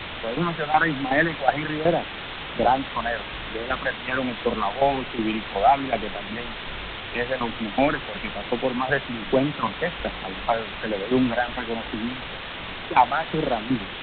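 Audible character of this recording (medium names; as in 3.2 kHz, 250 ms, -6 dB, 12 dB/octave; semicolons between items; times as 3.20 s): phasing stages 8, 1.2 Hz, lowest notch 310–1800 Hz; tremolo saw down 2.7 Hz, depth 80%; a quantiser's noise floor 6-bit, dither triangular; G.726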